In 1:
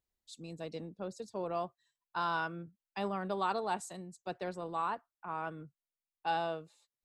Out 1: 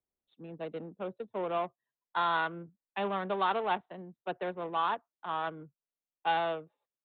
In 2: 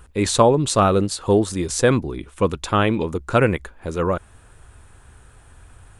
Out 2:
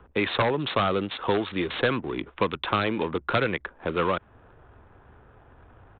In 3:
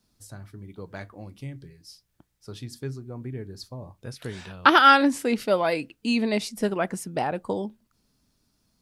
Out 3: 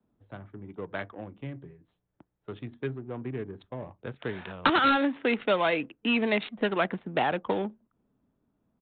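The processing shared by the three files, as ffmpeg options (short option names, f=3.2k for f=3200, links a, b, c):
-filter_complex "[0:a]adynamicsmooth=sensitivity=7:basefreq=750,aemphasis=mode=production:type=bsi,aresample=8000,aeval=exprs='0.316*(abs(mod(val(0)/0.316+3,4)-2)-1)':c=same,aresample=44100,acrossover=split=84|330|900|2200[a][b][c][d][e];[a]acompressor=threshold=-57dB:ratio=4[f];[b]acompressor=threshold=-35dB:ratio=4[g];[c]acompressor=threshold=-36dB:ratio=4[h];[d]acompressor=threshold=-34dB:ratio=4[i];[e]acompressor=threshold=-40dB:ratio=4[j];[f][g][h][i][j]amix=inputs=5:normalize=0,volume=5.5dB"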